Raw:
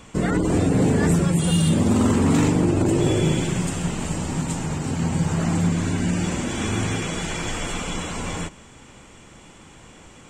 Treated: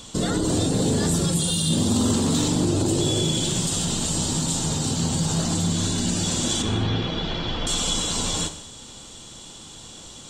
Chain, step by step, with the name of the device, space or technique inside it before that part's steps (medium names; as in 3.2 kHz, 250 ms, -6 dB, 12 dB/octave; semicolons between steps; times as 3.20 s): 6.62–7.67 s: Bessel low-pass 2.5 kHz, order 6; over-bright horn tweeter (resonant high shelf 2.9 kHz +8.5 dB, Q 3; peak limiter -14.5 dBFS, peak gain reduction 8 dB); gated-style reverb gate 270 ms falling, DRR 8 dB